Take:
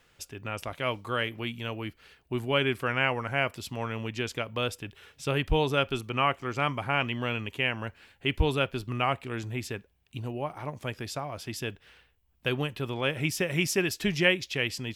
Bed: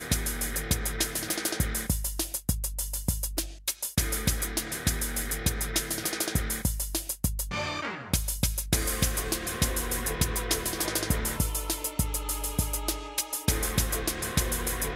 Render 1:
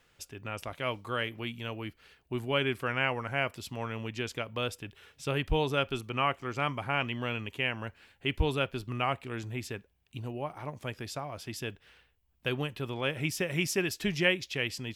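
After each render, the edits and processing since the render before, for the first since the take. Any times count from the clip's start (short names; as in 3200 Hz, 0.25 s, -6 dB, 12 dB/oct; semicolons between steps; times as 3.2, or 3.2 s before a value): gain -3 dB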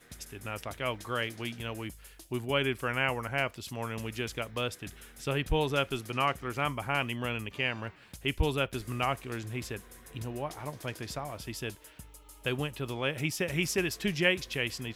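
add bed -21.5 dB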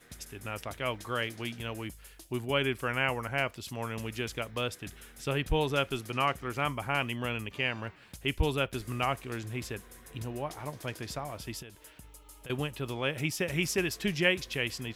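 11.62–12.5 compressor, threshold -44 dBFS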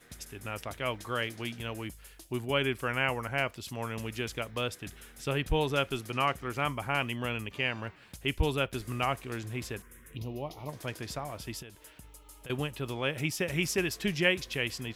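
9.82–10.69 envelope phaser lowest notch 550 Hz, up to 1600 Hz, full sweep at -38.5 dBFS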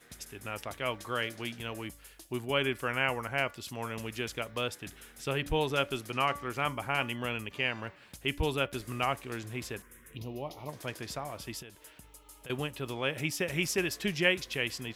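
low shelf 140 Hz -6 dB; de-hum 286.7 Hz, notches 7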